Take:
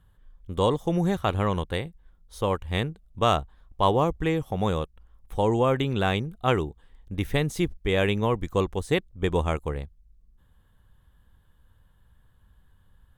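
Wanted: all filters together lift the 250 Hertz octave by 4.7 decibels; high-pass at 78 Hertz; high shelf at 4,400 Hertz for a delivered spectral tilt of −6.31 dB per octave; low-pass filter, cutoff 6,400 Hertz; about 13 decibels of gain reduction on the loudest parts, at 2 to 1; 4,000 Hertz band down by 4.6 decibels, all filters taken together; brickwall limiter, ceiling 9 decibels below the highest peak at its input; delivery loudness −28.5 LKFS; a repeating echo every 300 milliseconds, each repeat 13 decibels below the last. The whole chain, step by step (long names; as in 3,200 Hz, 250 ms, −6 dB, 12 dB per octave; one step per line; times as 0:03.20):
high-pass filter 78 Hz
low-pass filter 6,400 Hz
parametric band 250 Hz +7 dB
parametric band 4,000 Hz −8 dB
high-shelf EQ 4,400 Hz +4.5 dB
downward compressor 2 to 1, threshold −41 dBFS
brickwall limiter −29 dBFS
repeating echo 300 ms, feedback 22%, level −13 dB
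level +12 dB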